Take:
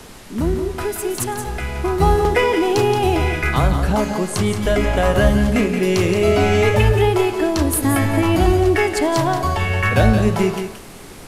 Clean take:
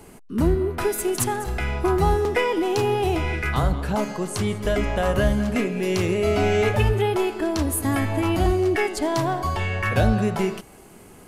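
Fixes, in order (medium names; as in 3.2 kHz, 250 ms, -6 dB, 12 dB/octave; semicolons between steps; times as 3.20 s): noise print and reduce 6 dB; inverse comb 175 ms -8 dB; gain correction -5 dB, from 2.00 s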